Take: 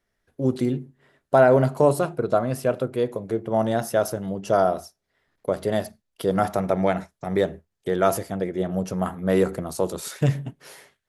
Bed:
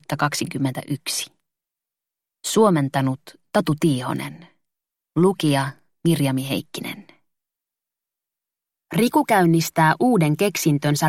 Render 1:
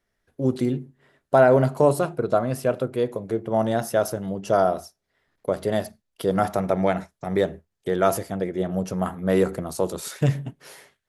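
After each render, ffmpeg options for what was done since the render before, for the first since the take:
-af anull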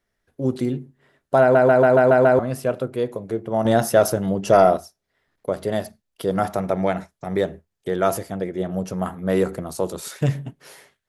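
-filter_complex "[0:a]asettb=1/sr,asplit=3[a][b][c];[a]atrim=end=3.654[d];[b]atrim=start=3.65:end=4.77,asetpts=PTS-STARTPTS,afade=t=in:d=0.004:c=qsin,afade=t=out:st=1.116:d=0.004:c=qsin,acontrast=72[e];[c]atrim=start=4.766[f];[d][e]acrossfade=d=0.004:c1=hsin:c2=qsin[g];[g][f]acrossfade=d=0.004:c1=qsin:c2=hsin,asplit=8[h][i][j][k][l][m][n][o];[h]atrim=end=1.552[p];[i]atrim=start=1.408:end=1.552[q];[j]atrim=start=1.408:end=1.552[r];[k]atrim=start=1.408:end=1.552[s];[l]atrim=start=1.408:end=1.552[t];[m]atrim=start=1.408:end=1.552[u];[n]atrim=start=1.408:end=1.552[v];[o]atrim=start=2.388[w];[p][q]acrossfade=d=0.004:c1=hsin:c2=hsin[x];[x][r]acrossfade=d=0.004:c1=hsin:c2=hsin[y];[y][s]acrossfade=d=0.004:c1=hsin:c2=hsin[z];[z][t]acrossfade=d=0.004:c1=hsin:c2=hsin[aa];[aa][u]acrossfade=d=0.004:c1=hsin:c2=hsin[ab];[ab][v]acrossfade=d=0.004:c1=hsin:c2=hsin[ac];[ac][w]acrossfade=d=0.004:c1=hsin:c2=hsin"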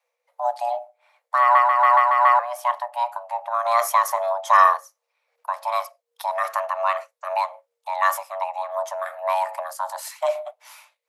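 -af "afreqshift=470,tremolo=f=2.6:d=0.4"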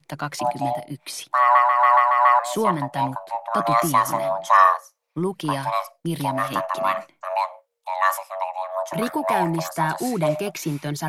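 -filter_complex "[1:a]volume=-8dB[a];[0:a][a]amix=inputs=2:normalize=0"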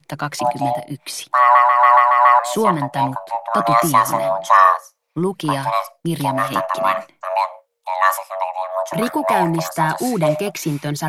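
-af "volume=4.5dB,alimiter=limit=-1dB:level=0:latency=1"

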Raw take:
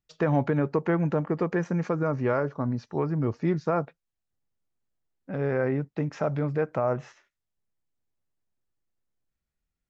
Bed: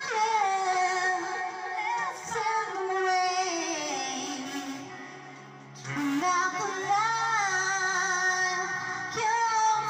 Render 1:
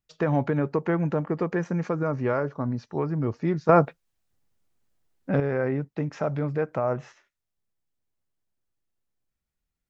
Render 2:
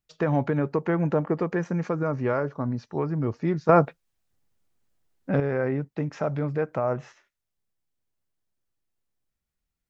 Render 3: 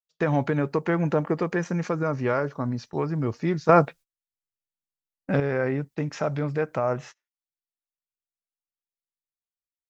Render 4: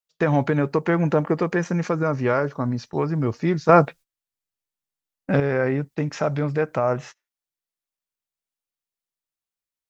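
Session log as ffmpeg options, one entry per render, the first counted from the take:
-filter_complex "[0:a]asplit=3[a][b][c];[a]atrim=end=3.692[d];[b]atrim=start=3.688:end=5.402,asetpts=PTS-STARTPTS,volume=9dB[e];[c]atrim=start=5.398[f];[d][e]acrossfade=d=0.004:c1=hsin:c2=hsin[g];[g][f]acrossfade=d=0.004:c1=hsin:c2=hsin"
-filter_complex "[0:a]asettb=1/sr,asplit=3[a][b][c];[a]atrim=end=0.974[d];[b]atrim=start=0.97:end=1.4,asetpts=PTS-STARTPTS,afade=t=in:d=0.004:c=qsin,afade=t=out:st=0.426:d=0.004:c=qsin,equalizer=f=600:t=o:w=2.2:g=3.5[e];[c]atrim=start=1.396[f];[d][e]acrossfade=d=0.004:c1=hsin:c2=qsin[g];[g][f]acrossfade=d=0.004:c1=qsin:c2=hsin"
-af "agate=range=-28dB:threshold=-43dB:ratio=16:detection=peak,highshelf=f=2.4k:g=10"
-af "volume=3.5dB,alimiter=limit=-1dB:level=0:latency=1"

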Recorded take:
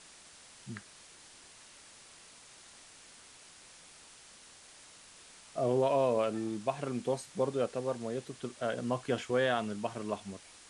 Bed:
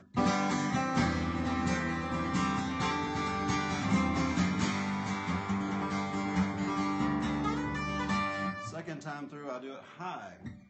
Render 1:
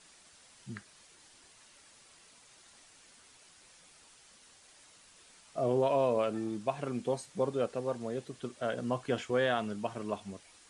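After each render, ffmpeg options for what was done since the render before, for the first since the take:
-af "afftdn=nr=6:nf=-56"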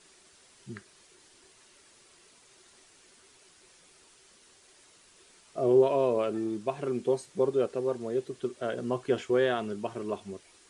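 -af "equalizer=f=380:w=4.4:g=12,bandreject=f=810:w=26"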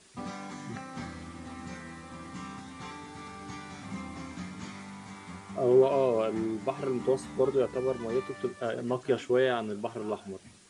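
-filter_complex "[1:a]volume=-11dB[a];[0:a][a]amix=inputs=2:normalize=0"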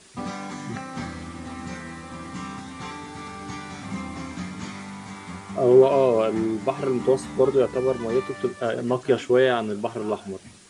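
-af "volume=7dB"

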